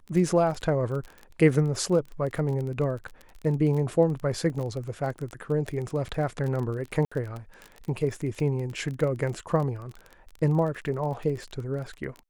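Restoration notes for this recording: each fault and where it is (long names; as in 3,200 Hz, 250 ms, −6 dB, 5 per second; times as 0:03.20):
surface crackle 25 per second −32 dBFS
0:07.05–0:07.12: drop-out 65 ms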